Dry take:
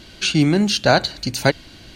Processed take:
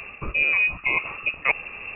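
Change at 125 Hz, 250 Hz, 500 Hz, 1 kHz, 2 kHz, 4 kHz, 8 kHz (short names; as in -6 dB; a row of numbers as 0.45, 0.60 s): -20.0 dB, -25.0 dB, -18.0 dB, -10.0 dB, +3.0 dB, -17.0 dB, under -40 dB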